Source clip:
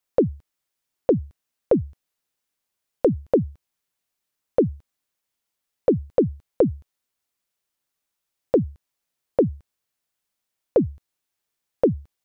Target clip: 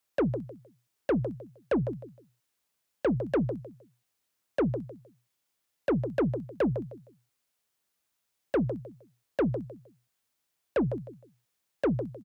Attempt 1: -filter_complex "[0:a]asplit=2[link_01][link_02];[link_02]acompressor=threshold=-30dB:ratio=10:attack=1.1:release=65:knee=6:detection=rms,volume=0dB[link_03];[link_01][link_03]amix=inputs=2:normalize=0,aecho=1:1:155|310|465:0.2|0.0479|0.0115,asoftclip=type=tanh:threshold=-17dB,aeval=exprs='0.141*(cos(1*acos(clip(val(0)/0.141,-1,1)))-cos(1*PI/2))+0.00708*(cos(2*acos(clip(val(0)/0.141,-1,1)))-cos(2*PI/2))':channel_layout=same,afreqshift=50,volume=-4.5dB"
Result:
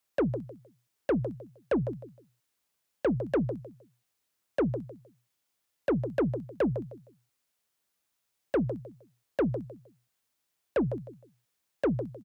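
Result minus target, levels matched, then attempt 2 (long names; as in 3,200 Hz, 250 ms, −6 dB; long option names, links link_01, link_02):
downward compressor: peak gain reduction +6 dB
-filter_complex "[0:a]asplit=2[link_01][link_02];[link_02]acompressor=threshold=-23.5dB:ratio=10:attack=1.1:release=65:knee=6:detection=rms,volume=0dB[link_03];[link_01][link_03]amix=inputs=2:normalize=0,aecho=1:1:155|310|465:0.2|0.0479|0.0115,asoftclip=type=tanh:threshold=-17dB,aeval=exprs='0.141*(cos(1*acos(clip(val(0)/0.141,-1,1)))-cos(1*PI/2))+0.00708*(cos(2*acos(clip(val(0)/0.141,-1,1)))-cos(2*PI/2))':channel_layout=same,afreqshift=50,volume=-4.5dB"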